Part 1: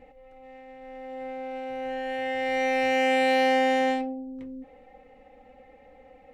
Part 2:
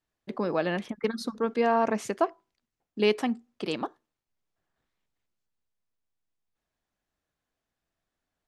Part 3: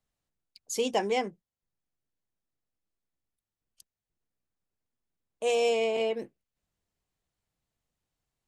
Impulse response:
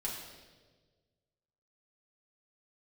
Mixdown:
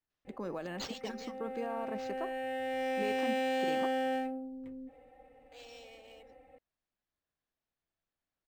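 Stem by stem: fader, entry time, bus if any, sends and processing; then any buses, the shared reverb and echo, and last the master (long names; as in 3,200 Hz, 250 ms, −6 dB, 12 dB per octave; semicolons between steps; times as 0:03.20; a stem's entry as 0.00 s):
−5.5 dB, 0.25 s, no send, soft clipping −22 dBFS, distortion −13 dB; notch comb filter 210 Hz
−9.0 dB, 0.00 s, no send, brickwall limiter −20 dBFS, peak gain reduction 8.5 dB
0:01.07 −2 dB → 0:01.29 −11 dB, 0.10 s, no send, first-order pre-emphasis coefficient 0.9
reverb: not used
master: linearly interpolated sample-rate reduction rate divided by 4×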